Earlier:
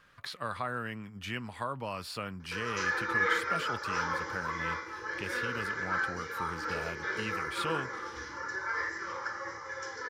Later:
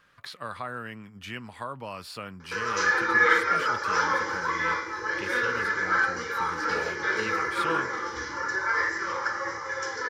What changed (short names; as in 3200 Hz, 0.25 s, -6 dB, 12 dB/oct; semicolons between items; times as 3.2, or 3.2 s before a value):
background +8.0 dB; master: add low shelf 84 Hz -6 dB